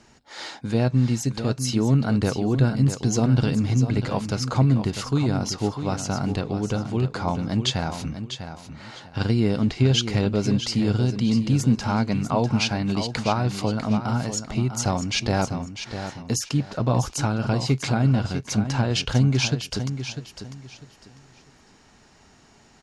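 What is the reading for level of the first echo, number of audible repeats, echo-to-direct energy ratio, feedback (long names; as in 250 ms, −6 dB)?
−9.5 dB, 3, −9.0 dB, 25%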